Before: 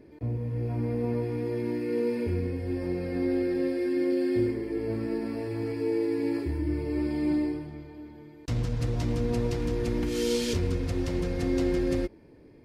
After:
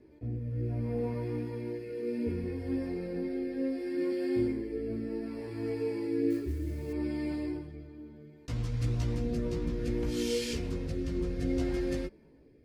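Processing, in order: chorus voices 4, 0.38 Hz, delay 16 ms, depth 2.7 ms; 6.30–6.93 s: modulation noise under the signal 24 dB; rotary cabinet horn 0.65 Hz

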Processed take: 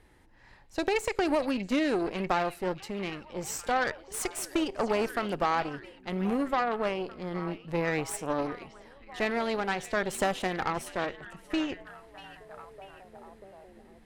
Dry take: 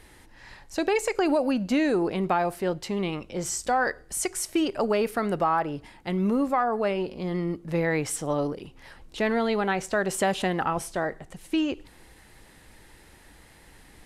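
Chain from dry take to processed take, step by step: repeats whose band climbs or falls 640 ms, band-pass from 3.3 kHz, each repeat -0.7 oct, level -6 dB; Chebyshev shaper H 3 -15 dB, 6 -23 dB, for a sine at -12 dBFS; tape noise reduction on one side only decoder only

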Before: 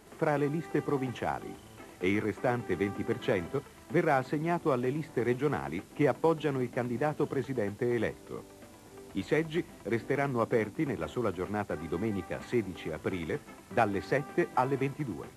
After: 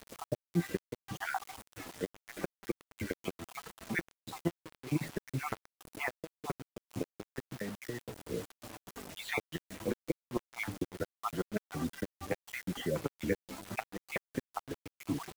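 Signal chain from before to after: random holes in the spectrogram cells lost 52%; band-stop 390 Hz, Q 12; 7.40–8.26 s: compression 8:1, threshold -40 dBFS, peak gain reduction 14 dB; inverted gate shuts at -24 dBFS, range -31 dB; flange 0.78 Hz, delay 4.2 ms, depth 7.6 ms, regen +23%; bit crusher 9-bit; buffer glitch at 11.13 s, samples 512, times 8; trim +8 dB

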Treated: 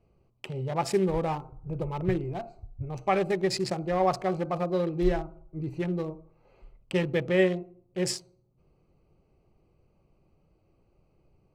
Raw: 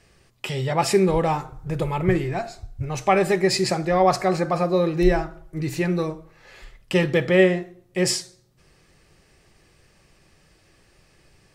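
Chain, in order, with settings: local Wiener filter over 25 samples; trim -6.5 dB

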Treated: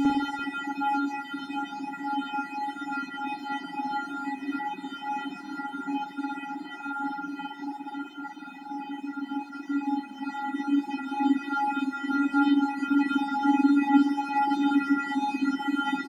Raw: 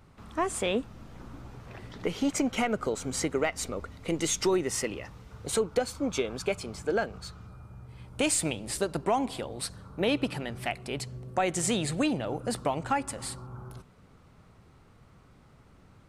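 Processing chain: sorted samples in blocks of 128 samples; high-pass 140 Hz 12 dB/octave; treble shelf 3.9 kHz -3 dB; frequency-shifting echo 289 ms, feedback 45%, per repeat -71 Hz, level -19 dB; vocoder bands 16, square 181 Hz; pitch shift +7.5 st; word length cut 12-bit, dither none; Paulstretch 23×, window 0.50 s, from 3.54 s; spring tank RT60 1.6 s, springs 49/56 ms, chirp 60 ms, DRR -6.5 dB; reverb removal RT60 1.9 s; trim +2 dB

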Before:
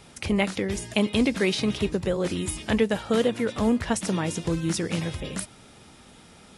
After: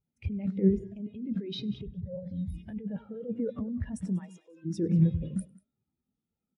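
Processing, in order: compressor with a negative ratio -28 dBFS, ratio -1; 0.51–1.27 s: treble shelf 7.1 kHz -10 dB; 1.86–2.54 s: static phaser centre 1.8 kHz, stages 8; 4.18–4.64 s: high-pass 870 Hz -> 410 Hz 12 dB/octave; multi-tap echo 100/191 ms -12.5/-9 dB; spectral contrast expander 2.5:1

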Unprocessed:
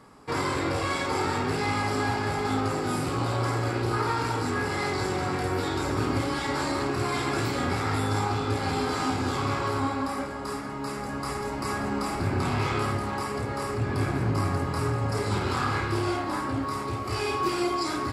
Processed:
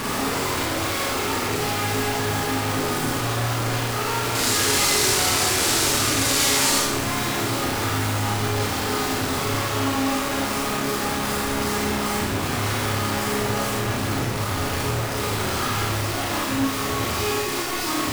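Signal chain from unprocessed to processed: one-bit comparator; 4.35–6.79 s: peaking EQ 7.4 kHz +11.5 dB 2.5 oct; Schroeder reverb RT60 0.81 s, combs from 26 ms, DRR -3 dB; trim -1 dB

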